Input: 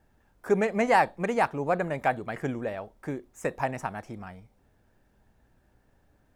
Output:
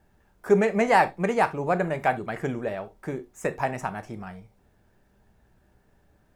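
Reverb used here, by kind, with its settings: non-linear reverb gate 0.1 s falling, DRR 10 dB; gain +2 dB

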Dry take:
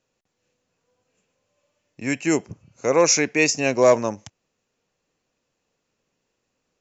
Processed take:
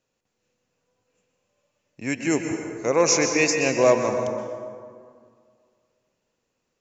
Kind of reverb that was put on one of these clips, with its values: plate-style reverb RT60 2.1 s, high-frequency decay 0.5×, pre-delay 0.11 s, DRR 4 dB; gain -2.5 dB

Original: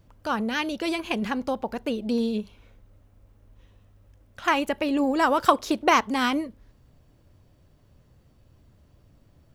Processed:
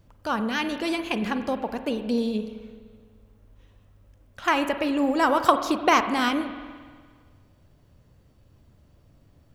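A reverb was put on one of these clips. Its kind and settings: spring tank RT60 1.7 s, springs 42/49 ms, chirp 40 ms, DRR 9 dB

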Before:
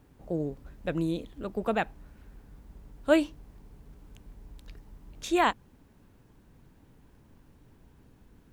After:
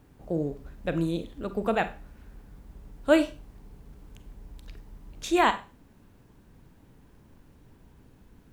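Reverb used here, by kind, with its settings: Schroeder reverb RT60 0.33 s, combs from 32 ms, DRR 10.5 dB; gain +2 dB

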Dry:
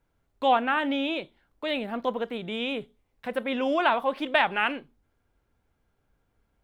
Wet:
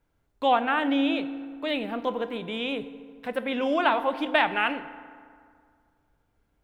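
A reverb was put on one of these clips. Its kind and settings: FDN reverb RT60 2.1 s, low-frequency decay 1.05×, high-frequency decay 0.55×, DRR 11.5 dB

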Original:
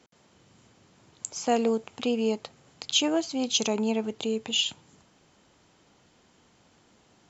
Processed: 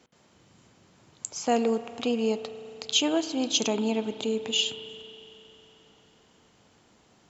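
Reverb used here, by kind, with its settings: spring tank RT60 3.2 s, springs 34 ms, chirp 20 ms, DRR 11.5 dB

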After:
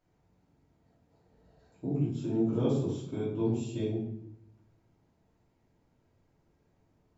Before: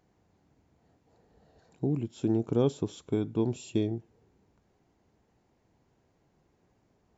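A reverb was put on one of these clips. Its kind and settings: shoebox room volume 160 m³, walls mixed, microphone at 2.8 m; gain -12.5 dB

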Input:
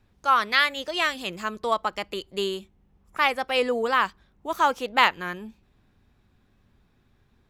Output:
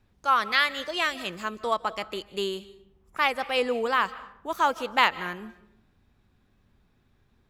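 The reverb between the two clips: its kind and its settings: digital reverb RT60 0.72 s, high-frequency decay 0.65×, pre-delay 0.115 s, DRR 17 dB; gain -2 dB

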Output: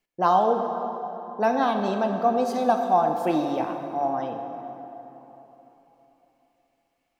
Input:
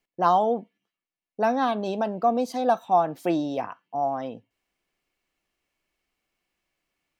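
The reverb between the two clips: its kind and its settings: plate-style reverb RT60 3.7 s, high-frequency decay 0.55×, DRR 4 dB

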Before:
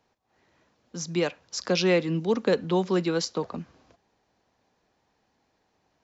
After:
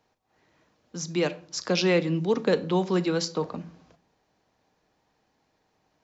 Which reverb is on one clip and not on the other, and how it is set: shoebox room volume 600 m³, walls furnished, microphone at 0.52 m

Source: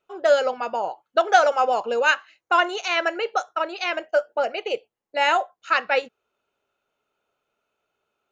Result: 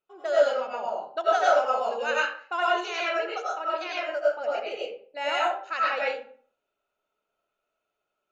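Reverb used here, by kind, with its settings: digital reverb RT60 0.49 s, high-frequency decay 0.65×, pre-delay 60 ms, DRR -6 dB; gain -12 dB

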